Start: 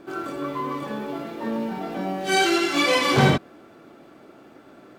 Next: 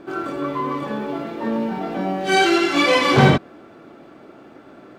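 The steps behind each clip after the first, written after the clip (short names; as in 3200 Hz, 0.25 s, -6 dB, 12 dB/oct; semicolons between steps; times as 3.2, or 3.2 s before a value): LPF 3900 Hz 6 dB/oct; gain +4.5 dB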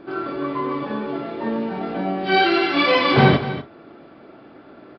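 echo 0.242 s -13 dB; reverb, pre-delay 35 ms, DRR 12 dB; downsampling 11025 Hz; gain -1 dB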